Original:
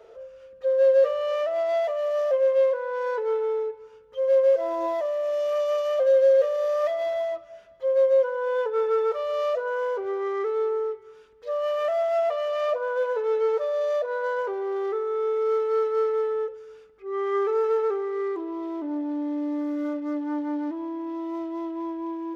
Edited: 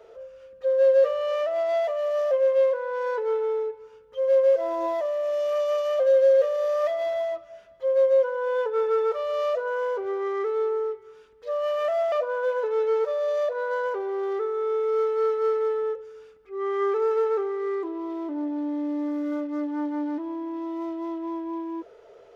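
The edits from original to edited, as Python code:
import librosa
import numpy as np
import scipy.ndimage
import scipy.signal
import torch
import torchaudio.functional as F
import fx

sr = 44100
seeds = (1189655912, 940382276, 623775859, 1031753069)

y = fx.edit(x, sr, fx.cut(start_s=12.12, length_s=0.53), tone=tone)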